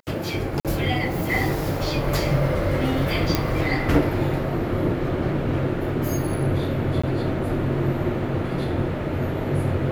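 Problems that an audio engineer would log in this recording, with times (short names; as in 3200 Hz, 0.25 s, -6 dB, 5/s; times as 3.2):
0.6–0.65 gap 47 ms
3.35 pop -5 dBFS
7.02–7.04 gap 15 ms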